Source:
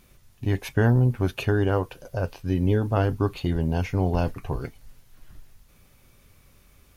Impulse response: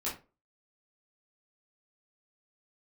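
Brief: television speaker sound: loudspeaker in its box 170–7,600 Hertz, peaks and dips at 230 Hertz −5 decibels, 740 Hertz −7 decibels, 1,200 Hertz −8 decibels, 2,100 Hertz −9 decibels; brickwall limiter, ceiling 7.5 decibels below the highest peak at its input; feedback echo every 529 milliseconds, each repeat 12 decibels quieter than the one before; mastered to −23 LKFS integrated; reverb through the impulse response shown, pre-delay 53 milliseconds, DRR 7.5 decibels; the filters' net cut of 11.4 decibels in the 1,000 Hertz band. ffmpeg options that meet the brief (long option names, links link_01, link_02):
-filter_complex "[0:a]equalizer=frequency=1000:width_type=o:gain=-8.5,alimiter=limit=-16.5dB:level=0:latency=1,aecho=1:1:529|1058|1587:0.251|0.0628|0.0157,asplit=2[link_01][link_02];[1:a]atrim=start_sample=2205,adelay=53[link_03];[link_02][link_03]afir=irnorm=-1:irlink=0,volume=-11dB[link_04];[link_01][link_04]amix=inputs=2:normalize=0,highpass=frequency=170:width=0.5412,highpass=frequency=170:width=1.3066,equalizer=frequency=230:width_type=q:width=4:gain=-5,equalizer=frequency=740:width_type=q:width=4:gain=-7,equalizer=frequency=1200:width_type=q:width=4:gain=-8,equalizer=frequency=2100:width_type=q:width=4:gain=-9,lowpass=frequency=7600:width=0.5412,lowpass=frequency=7600:width=1.3066,volume=10dB"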